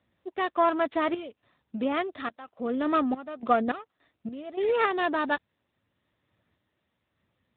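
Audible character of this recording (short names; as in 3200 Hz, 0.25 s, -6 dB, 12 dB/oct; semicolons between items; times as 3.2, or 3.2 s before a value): a buzz of ramps at a fixed pitch in blocks of 8 samples; random-step tremolo 3.5 Hz, depth 90%; AMR-NB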